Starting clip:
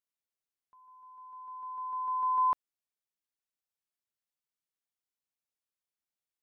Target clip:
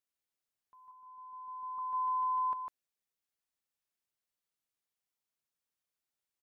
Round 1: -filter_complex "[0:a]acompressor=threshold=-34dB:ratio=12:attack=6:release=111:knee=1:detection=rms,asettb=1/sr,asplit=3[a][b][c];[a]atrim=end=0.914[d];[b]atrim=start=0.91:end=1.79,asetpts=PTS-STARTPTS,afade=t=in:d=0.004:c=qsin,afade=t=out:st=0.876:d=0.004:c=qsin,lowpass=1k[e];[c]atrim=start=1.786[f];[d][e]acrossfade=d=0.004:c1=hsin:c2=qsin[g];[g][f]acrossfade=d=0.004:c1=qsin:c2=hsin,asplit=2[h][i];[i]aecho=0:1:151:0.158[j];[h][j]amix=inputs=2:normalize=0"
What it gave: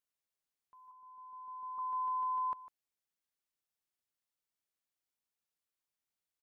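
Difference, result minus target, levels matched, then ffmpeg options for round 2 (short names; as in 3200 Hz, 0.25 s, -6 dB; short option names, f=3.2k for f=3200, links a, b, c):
echo-to-direct -11.5 dB
-filter_complex "[0:a]acompressor=threshold=-34dB:ratio=12:attack=6:release=111:knee=1:detection=rms,asettb=1/sr,asplit=3[a][b][c];[a]atrim=end=0.914[d];[b]atrim=start=0.91:end=1.79,asetpts=PTS-STARTPTS,afade=t=in:d=0.004:c=qsin,afade=t=out:st=0.876:d=0.004:c=qsin,lowpass=1k[e];[c]atrim=start=1.786[f];[d][e]acrossfade=d=0.004:c1=hsin:c2=qsin[g];[g][f]acrossfade=d=0.004:c1=qsin:c2=hsin,asplit=2[h][i];[i]aecho=0:1:151:0.596[j];[h][j]amix=inputs=2:normalize=0"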